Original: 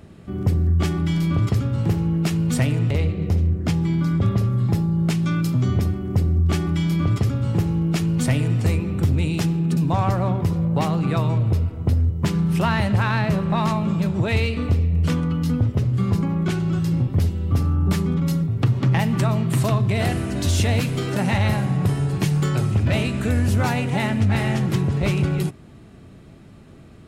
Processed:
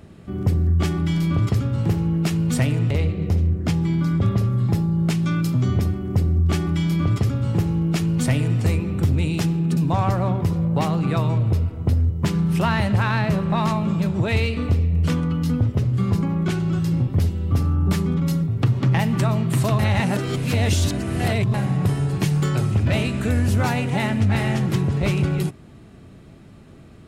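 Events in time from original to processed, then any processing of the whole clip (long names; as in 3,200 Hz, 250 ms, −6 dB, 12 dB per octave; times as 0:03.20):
0:19.79–0:21.54: reverse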